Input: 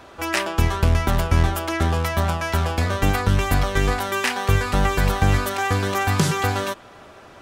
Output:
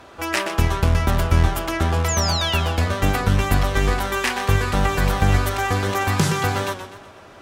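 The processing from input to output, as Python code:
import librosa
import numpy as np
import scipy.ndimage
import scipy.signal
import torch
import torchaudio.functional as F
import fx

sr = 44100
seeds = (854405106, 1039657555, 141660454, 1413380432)

y = fx.cheby_harmonics(x, sr, harmonics=(2,), levels_db=(-25,), full_scale_db=-5.0)
y = fx.spec_paint(y, sr, seeds[0], shape='fall', start_s=2.08, length_s=0.52, low_hz=2500.0, high_hz=7400.0, level_db=-26.0)
y = fx.echo_warbled(y, sr, ms=123, feedback_pct=46, rate_hz=2.8, cents=103, wet_db=-10.5)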